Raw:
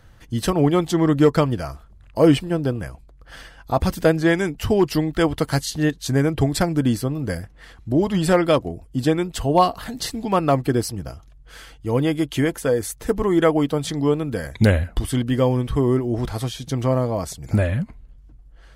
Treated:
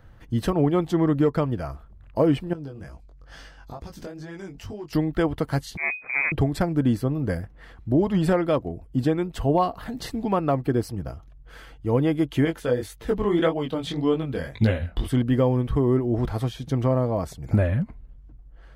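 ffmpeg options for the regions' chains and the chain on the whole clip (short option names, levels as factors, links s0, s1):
-filter_complex "[0:a]asettb=1/sr,asplit=3[s0][s1][s2];[s0]atrim=end=2.534[s3];[s1]atrim=start=2.53:end=4.93,asetpts=PTS-STARTPTS,afade=t=in:d=0.004:c=qsin,afade=t=out:st=2.396:d=0.004:c=qsin,equalizer=f=5800:w=1.1:g=12,acompressor=threshold=0.0316:ratio=6:attack=3.2:release=140:knee=1:detection=peak,flanger=delay=18.5:depth=4:speed=2.2[s4];[s2]atrim=start=4.926[s5];[s3][s4]acrossfade=d=0.004:c1=hsin:c2=qsin[s6];[s6][s5]acrossfade=d=0.004:c1=qsin:c2=hsin,asettb=1/sr,asplit=3[s7][s8][s9];[s7]atrim=end=5.774[s10];[s8]atrim=start=5.77:end=6.32,asetpts=PTS-STARTPTS,afade=t=in:d=0.004:c=qsin,afade=t=out:st=0.546:d=0.004:c=qsin,aeval=exprs='max(val(0),0)':c=same,lowpass=f=2100:t=q:w=0.5098,lowpass=f=2100:t=q:w=0.6013,lowpass=f=2100:t=q:w=0.9,lowpass=f=2100:t=q:w=2.563,afreqshift=-2500[s11];[s9]atrim=start=6.316[s12];[s10][s11]acrossfade=d=0.004:c1=hsin:c2=qsin[s13];[s13][s12]acrossfade=d=0.004:c1=qsin:c2=hsin,asettb=1/sr,asplit=3[s14][s15][s16];[s14]atrim=end=12.454[s17];[s15]atrim=start=12.45:end=15.08,asetpts=PTS-STARTPTS,afade=t=in:d=0.004:c=qsin,afade=t=out:st=2.626:d=0.004:c=qsin,flanger=delay=17.5:depth=6.8:speed=1.8,equalizer=f=3400:t=o:w=1.1:g=9.5[s18];[s16]atrim=start=15.076[s19];[s17][s18]acrossfade=d=0.004:c1=hsin:c2=qsin[s20];[s20][s19]acrossfade=d=0.004:c1=qsin:c2=hsin,equalizer=f=8100:w=0.35:g=-12,alimiter=limit=0.299:level=0:latency=1:release=413"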